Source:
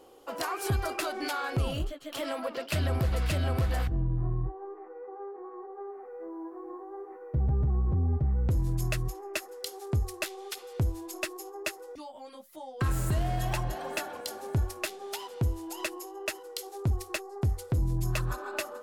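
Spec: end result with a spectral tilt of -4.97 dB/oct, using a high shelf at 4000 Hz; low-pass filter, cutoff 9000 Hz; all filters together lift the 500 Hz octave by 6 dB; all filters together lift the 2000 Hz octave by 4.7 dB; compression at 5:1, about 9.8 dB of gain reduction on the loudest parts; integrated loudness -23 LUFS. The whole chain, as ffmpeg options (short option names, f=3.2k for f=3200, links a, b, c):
-af "lowpass=9k,equalizer=f=500:t=o:g=7.5,equalizer=f=2k:t=o:g=7,highshelf=f=4k:g=-3.5,acompressor=threshold=-34dB:ratio=5,volume=15dB"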